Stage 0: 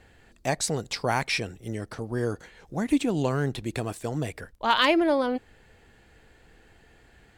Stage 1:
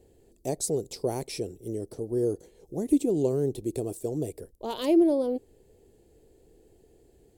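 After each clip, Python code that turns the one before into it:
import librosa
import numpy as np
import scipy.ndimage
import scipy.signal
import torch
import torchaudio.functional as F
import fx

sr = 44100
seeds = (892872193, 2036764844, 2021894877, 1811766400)

y = fx.curve_eq(x, sr, hz=(230.0, 390.0, 1500.0, 11000.0), db=(0, 11, -21, 8))
y = y * librosa.db_to_amplitude(-4.5)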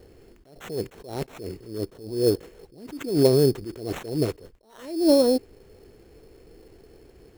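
y = fx.vibrato(x, sr, rate_hz=6.8, depth_cents=49.0)
y = fx.sample_hold(y, sr, seeds[0], rate_hz=4800.0, jitter_pct=0)
y = fx.attack_slew(y, sr, db_per_s=100.0)
y = y * librosa.db_to_amplitude(8.5)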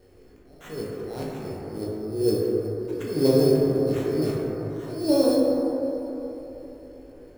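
y = fx.comb_fb(x, sr, f0_hz=53.0, decay_s=0.19, harmonics='all', damping=0.0, mix_pct=90)
y = fx.echo_feedback(y, sr, ms=370, feedback_pct=55, wet_db=-20.5)
y = fx.rev_plate(y, sr, seeds[1], rt60_s=3.6, hf_ratio=0.25, predelay_ms=0, drr_db=-5.0)
y = y * librosa.db_to_amplitude(-1.5)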